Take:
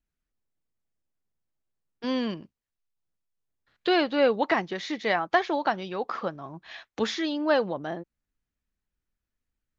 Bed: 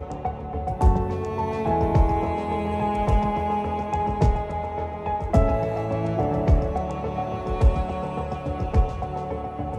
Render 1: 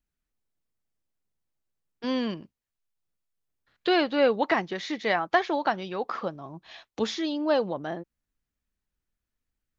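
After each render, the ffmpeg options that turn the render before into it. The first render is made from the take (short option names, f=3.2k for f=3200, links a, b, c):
-filter_complex "[0:a]asettb=1/sr,asplit=3[a][b][c];[a]atrim=end=6.244[d];[b]atrim=start=6.24:end=7.72,asetpts=PTS-STARTPTS,afade=t=in:d=0.004:c=qsin,afade=t=out:st=1.476:d=0.004:c=qsin,equalizer=f=1.7k:w=1.4:g=-7[e];[c]atrim=start=7.716[f];[d][e]acrossfade=d=0.004:c1=hsin:c2=qsin[g];[g][f]acrossfade=d=0.004:c1=qsin:c2=hsin"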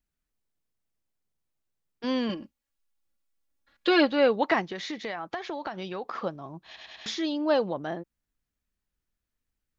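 -filter_complex "[0:a]asettb=1/sr,asplit=3[a][b][c];[a]atrim=end=2.294[d];[b]atrim=start=2.29:end=4.12,asetpts=PTS-STARTPTS,afade=t=in:d=0.004:c=qsin,afade=t=out:st=1.826:d=0.004:c=qsin,aecho=1:1:3.6:0.86,atrim=end_sample=80703[e];[c]atrim=start=4.116[f];[d][e]acrossfade=d=0.004:c1=hsin:c2=qsin[g];[g][f]acrossfade=d=0.004:c1=qsin:c2=hsin,asettb=1/sr,asplit=3[h][i][j];[h]atrim=end=4.704[k];[i]atrim=start=4.7:end=6.16,asetpts=PTS-STARTPTS,afade=t=in:d=0.004:c=qsin,afade=t=out:st=1.456:d=0.004:c=qsin,acompressor=threshold=-30dB:ratio=6:attack=3.2:release=140:knee=1:detection=peak[l];[j]atrim=start=6.156[m];[k][l]acrossfade=d=0.004:c1=hsin:c2=qsin[n];[n][m]acrossfade=d=0.004:c1=qsin:c2=hsin,asplit=5[o][p][q][r][s];[o]atrim=end=6.762[t];[p]atrim=start=6.658:end=6.762[u];[q]atrim=start=6.658:end=6.762[v];[r]atrim=start=6.658:end=6.762[w];[s]atrim=start=7.058[x];[t][u]acrossfade=d=0.004:c1=hsin:c2=hsin[y];[y][v]acrossfade=d=0.004:c1=hsin:c2=hsin[z];[z][w]acrossfade=d=0.004:c1=hsin:c2=hsin[aa];[aa][x]acrossfade=d=0.004:c1=hsin:c2=hsin"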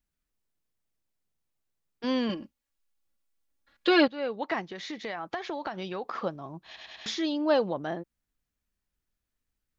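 -filter_complex "[0:a]asplit=2[a][b];[a]atrim=end=4.08,asetpts=PTS-STARTPTS,afade=t=out:st=4.076:d=0.004:c=hsin:silence=0.188365[c];[b]atrim=start=4.08,asetpts=PTS-STARTPTS,afade=t=in:d=1.24:silence=0.188365[d];[c][d]concat=n=2:v=0:a=1"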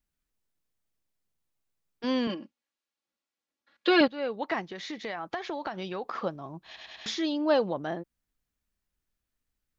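-filter_complex "[0:a]asettb=1/sr,asplit=3[a][b][c];[a]atrim=end=2.274[d];[b]atrim=start=2.27:end=4.01,asetpts=PTS-STARTPTS,afade=t=in:d=0.004:c=qsin,afade=t=out:st=1.736:d=0.004:c=qsin,highpass=200,lowpass=6k[e];[c]atrim=start=4.006[f];[d][e]acrossfade=d=0.004:c1=hsin:c2=qsin[g];[g][f]acrossfade=d=0.004:c1=qsin:c2=hsin"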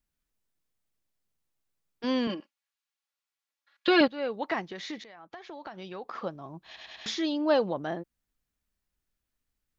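-filter_complex "[0:a]asettb=1/sr,asplit=3[a][b][c];[a]atrim=end=2.404[d];[b]atrim=start=2.4:end=3.88,asetpts=PTS-STARTPTS,afade=t=in:d=0.004:c=qsin,afade=t=out:st=1.476:d=0.004:c=qsin,highpass=920[e];[c]atrim=start=3.876[f];[d][e]acrossfade=d=0.004:c1=hsin:c2=qsin[g];[g][f]acrossfade=d=0.004:c1=qsin:c2=hsin,asplit=2[h][i];[h]atrim=end=5.04,asetpts=PTS-STARTPTS,afade=t=out:st=5.036:d=0.004:c=hsin:silence=0.149624[j];[i]atrim=start=5.04,asetpts=PTS-STARTPTS,afade=t=in:d=1.87:silence=0.149624[k];[j][k]concat=n=2:v=0:a=1"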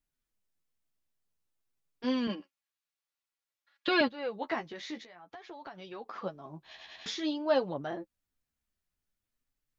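-af "flanger=delay=6.6:depth=7.7:regen=20:speed=0.52:shape=triangular"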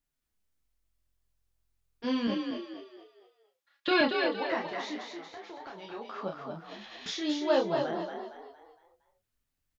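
-filter_complex "[0:a]asplit=2[a][b];[b]adelay=30,volume=-4.5dB[c];[a][c]amix=inputs=2:normalize=0,asplit=6[d][e][f][g][h][i];[e]adelay=231,afreqshift=43,volume=-5dB[j];[f]adelay=462,afreqshift=86,volume=-13.2dB[k];[g]adelay=693,afreqshift=129,volume=-21.4dB[l];[h]adelay=924,afreqshift=172,volume=-29.5dB[m];[i]adelay=1155,afreqshift=215,volume=-37.7dB[n];[d][j][k][l][m][n]amix=inputs=6:normalize=0"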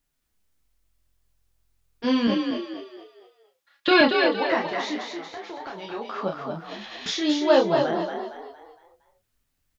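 -af "volume=8dB"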